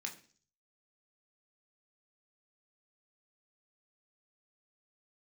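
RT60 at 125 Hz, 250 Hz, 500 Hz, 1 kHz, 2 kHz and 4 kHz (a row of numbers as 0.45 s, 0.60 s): 0.70 s, 0.55 s, 0.45 s, 0.40 s, 0.45 s, 0.55 s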